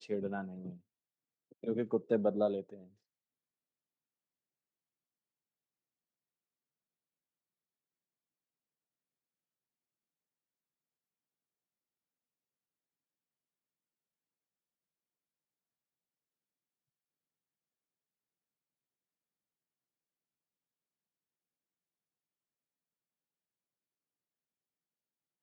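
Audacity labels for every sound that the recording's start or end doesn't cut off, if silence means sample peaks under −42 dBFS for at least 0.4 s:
1.640000	2.740000	sound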